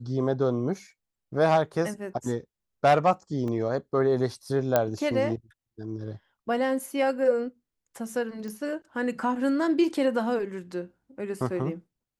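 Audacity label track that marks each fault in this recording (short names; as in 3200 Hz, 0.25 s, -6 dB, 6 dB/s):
3.480000	3.480000	gap 2.2 ms
4.760000	4.760000	pop -8 dBFS
8.480000	8.480000	pop -27 dBFS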